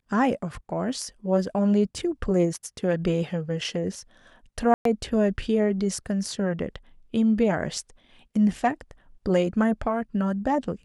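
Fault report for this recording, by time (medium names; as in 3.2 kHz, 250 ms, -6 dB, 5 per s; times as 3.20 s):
4.74–4.85 s: dropout 113 ms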